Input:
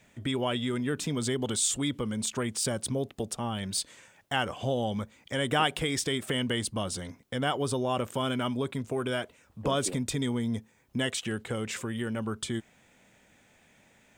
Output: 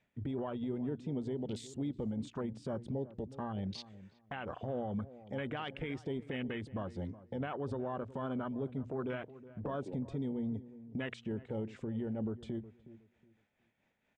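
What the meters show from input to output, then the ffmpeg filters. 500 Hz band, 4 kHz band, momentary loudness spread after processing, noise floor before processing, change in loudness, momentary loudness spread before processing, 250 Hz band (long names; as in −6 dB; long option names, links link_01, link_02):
−7.5 dB, −19.5 dB, 6 LU, −63 dBFS, −9.0 dB, 8 LU, −6.0 dB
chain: -filter_complex "[0:a]afwtdn=0.02,tremolo=f=4.4:d=0.52,acompressor=threshold=-34dB:ratio=2.5,alimiter=level_in=7.5dB:limit=-24dB:level=0:latency=1:release=47,volume=-7.5dB,lowpass=3700,bandreject=frequency=60:width_type=h:width=6,bandreject=frequency=120:width_type=h:width=6,asplit=2[link_01][link_02];[link_02]adelay=367,lowpass=frequency=850:poles=1,volume=-15dB,asplit=2[link_03][link_04];[link_04]adelay=367,lowpass=frequency=850:poles=1,volume=0.25,asplit=2[link_05][link_06];[link_06]adelay=367,lowpass=frequency=850:poles=1,volume=0.25[link_07];[link_01][link_03][link_05][link_07]amix=inputs=4:normalize=0,volume=2dB"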